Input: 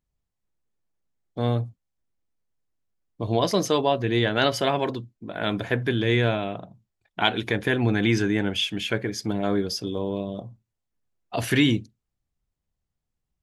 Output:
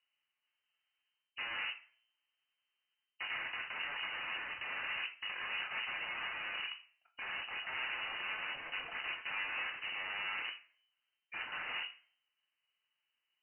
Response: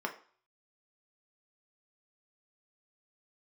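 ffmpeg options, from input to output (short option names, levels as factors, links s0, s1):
-filter_complex "[0:a]areverse,acompressor=threshold=0.0178:ratio=4,areverse,aeval=exprs='0.1*(cos(1*acos(clip(val(0)/0.1,-1,1)))-cos(1*PI/2))+0.000708*(cos(2*acos(clip(val(0)/0.1,-1,1)))-cos(2*PI/2))+0.002*(cos(4*acos(clip(val(0)/0.1,-1,1)))-cos(4*PI/2))+0.00891*(cos(8*acos(clip(val(0)/0.1,-1,1)))-cos(8*PI/2))':c=same,aeval=exprs='(mod(84.1*val(0)+1,2)-1)/84.1':c=same[s0];[1:a]atrim=start_sample=2205[s1];[s0][s1]afir=irnorm=-1:irlink=0,lowpass=f=2600:t=q:w=0.5098,lowpass=f=2600:t=q:w=0.6013,lowpass=f=2600:t=q:w=0.9,lowpass=f=2600:t=q:w=2.563,afreqshift=-3100,volume=1.12"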